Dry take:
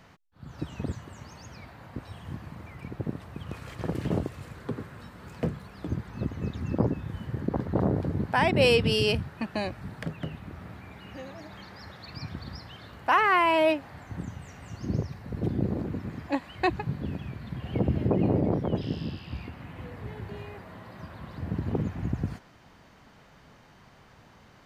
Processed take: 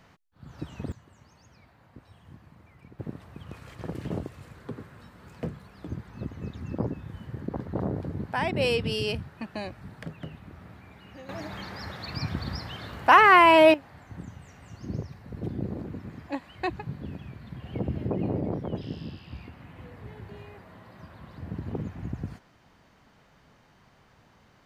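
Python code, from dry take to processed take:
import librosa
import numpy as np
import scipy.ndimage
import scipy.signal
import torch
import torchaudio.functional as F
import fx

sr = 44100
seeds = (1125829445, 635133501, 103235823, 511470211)

y = fx.gain(x, sr, db=fx.steps((0.0, -2.5), (0.92, -11.5), (2.99, -4.5), (11.29, 6.5), (13.74, -4.5)))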